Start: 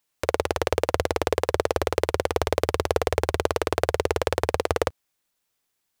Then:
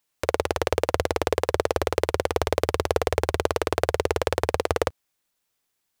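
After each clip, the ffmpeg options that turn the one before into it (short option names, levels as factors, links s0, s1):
-af anull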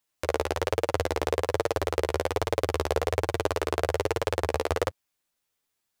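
-af "flanger=delay=8.6:depth=4.9:regen=4:speed=1.2:shape=sinusoidal"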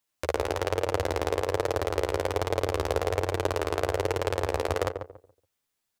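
-filter_complex "[0:a]asplit=2[s0][s1];[s1]adelay=141,lowpass=f=960:p=1,volume=0.501,asplit=2[s2][s3];[s3]adelay=141,lowpass=f=960:p=1,volume=0.28,asplit=2[s4][s5];[s5]adelay=141,lowpass=f=960:p=1,volume=0.28,asplit=2[s6][s7];[s7]adelay=141,lowpass=f=960:p=1,volume=0.28[s8];[s0][s2][s4][s6][s8]amix=inputs=5:normalize=0,volume=0.891"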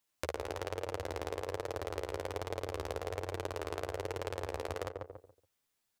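-af "acompressor=threshold=0.0224:ratio=6,volume=0.891"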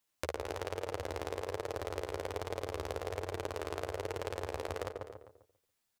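-af "aecho=1:1:255:0.188"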